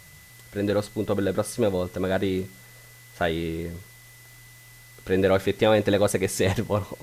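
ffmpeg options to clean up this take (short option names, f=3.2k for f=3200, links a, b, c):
-af "adeclick=t=4,bandreject=f=2k:w=30,afftdn=nr=20:nf=-49"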